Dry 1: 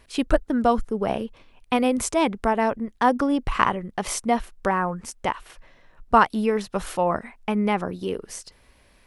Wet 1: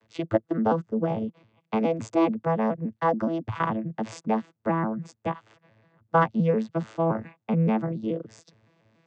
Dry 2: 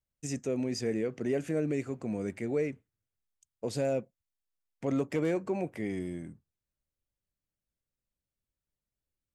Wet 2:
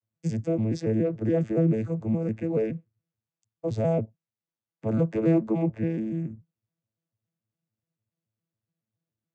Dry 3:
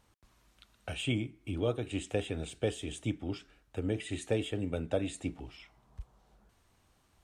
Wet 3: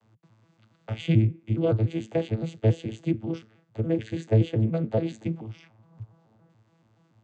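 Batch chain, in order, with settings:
arpeggiated vocoder bare fifth, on A2, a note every 0.142 s; match loudness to -27 LUFS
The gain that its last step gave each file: -1.5, +7.5, +10.5 dB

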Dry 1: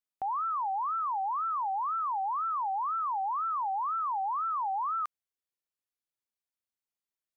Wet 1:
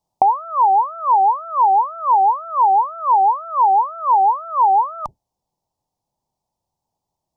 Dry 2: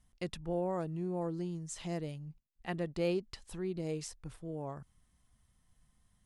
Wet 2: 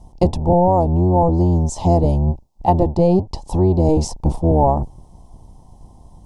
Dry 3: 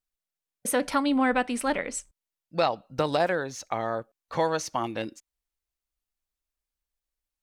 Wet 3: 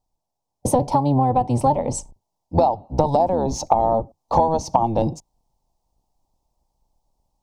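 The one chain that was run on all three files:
octaver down 1 oct, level +3 dB; vocal rider within 5 dB 0.5 s; EQ curve 460 Hz 0 dB, 890 Hz +12 dB, 1500 Hz -26 dB, 5400 Hz -6 dB, 12000 Hz -14 dB; compressor 6:1, threshold -30 dBFS; normalise peaks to -2 dBFS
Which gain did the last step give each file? +17.5, +20.5, +14.5 dB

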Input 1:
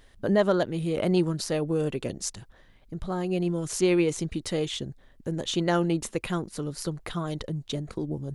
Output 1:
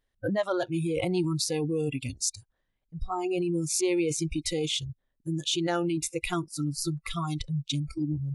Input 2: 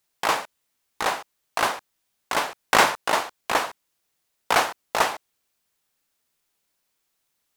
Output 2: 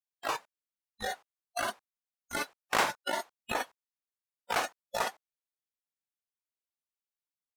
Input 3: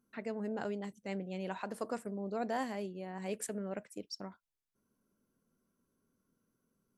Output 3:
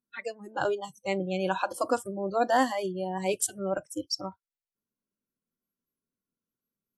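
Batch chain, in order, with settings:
spectral noise reduction 27 dB; in parallel at +1 dB: negative-ratio compressor -31 dBFS, ratio -0.5; on the sum: normalise peaks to -12 dBFS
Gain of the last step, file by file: -4.0, -10.5, +6.5 dB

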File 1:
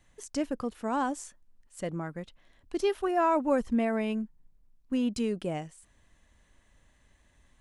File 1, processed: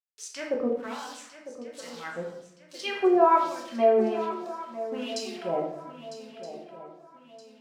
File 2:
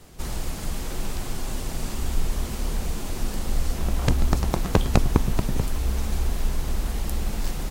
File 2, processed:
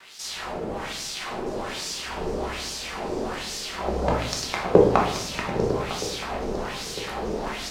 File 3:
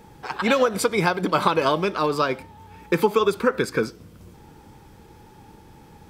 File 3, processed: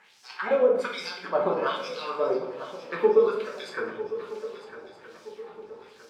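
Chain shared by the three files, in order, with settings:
bit-crush 8-bit; LFO band-pass sine 1.2 Hz 410–5500 Hz; swung echo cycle 1.27 s, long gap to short 3:1, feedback 38%, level -13.5 dB; shoebox room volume 200 m³, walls mixed, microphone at 1.1 m; match loudness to -27 LUFS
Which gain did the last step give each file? +8.0, +10.5, -1.5 dB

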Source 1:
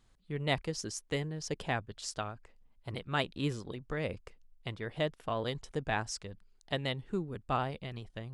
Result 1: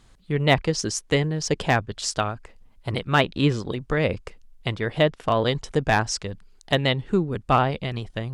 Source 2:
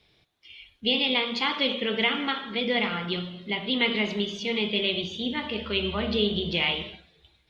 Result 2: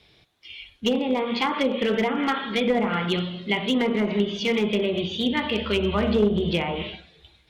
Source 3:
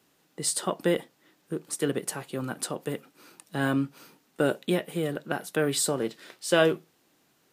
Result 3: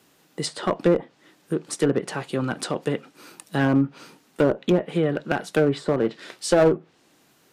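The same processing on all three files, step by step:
treble ducked by the level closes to 970 Hz, closed at -21 dBFS; one-sided clip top -23 dBFS; match loudness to -24 LUFS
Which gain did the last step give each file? +13.0, +6.5, +7.0 dB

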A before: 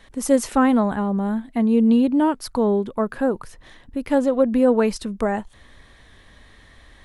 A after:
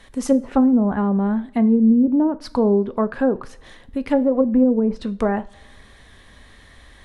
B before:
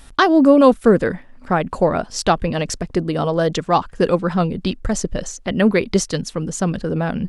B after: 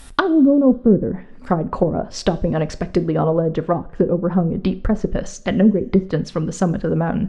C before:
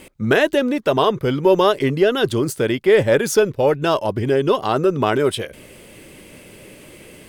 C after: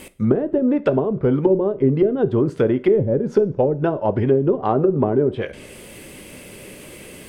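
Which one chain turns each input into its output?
treble ducked by the level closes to 330 Hz, closed at -12.5 dBFS; high shelf 12000 Hz +9 dB; two-slope reverb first 0.37 s, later 1.7 s, from -20 dB, DRR 12 dB; match loudness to -19 LUFS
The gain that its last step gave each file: +2.0, +2.5, +2.5 dB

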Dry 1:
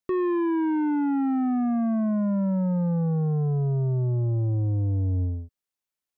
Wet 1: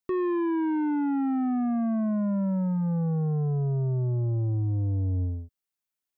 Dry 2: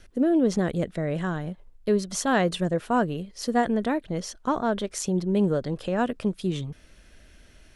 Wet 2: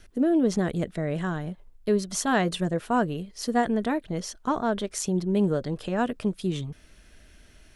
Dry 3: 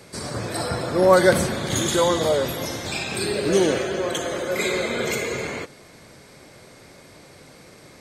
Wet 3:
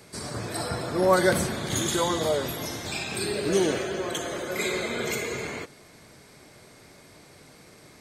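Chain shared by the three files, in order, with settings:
high shelf 11000 Hz +5 dB; notch 530 Hz, Q 12; match loudness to -27 LUFS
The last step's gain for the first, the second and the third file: -2.0, -0.5, -4.0 dB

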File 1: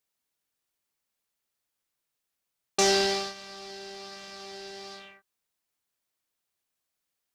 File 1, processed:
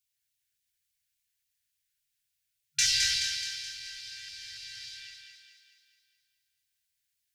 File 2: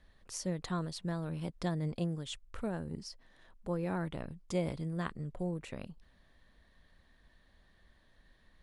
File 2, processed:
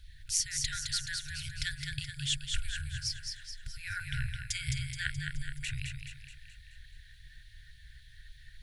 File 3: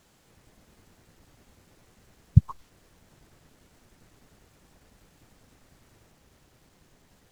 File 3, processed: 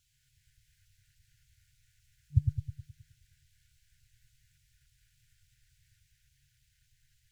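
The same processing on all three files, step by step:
FFT band-reject 150–1400 Hz; LFO notch saw down 3.5 Hz 810–1900 Hz; split-band echo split 310 Hz, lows 0.105 s, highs 0.213 s, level -5 dB; normalise peaks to -12 dBFS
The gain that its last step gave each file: +1.0, +12.0, -8.5 dB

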